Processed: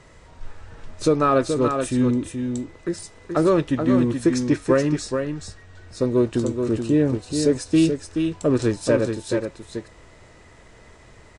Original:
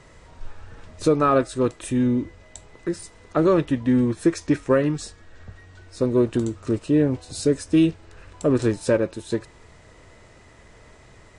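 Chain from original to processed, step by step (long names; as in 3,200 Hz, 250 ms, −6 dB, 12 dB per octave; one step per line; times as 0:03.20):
dynamic equaliser 5,400 Hz, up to +4 dB, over −46 dBFS, Q 1.2
on a send: single-tap delay 427 ms −6 dB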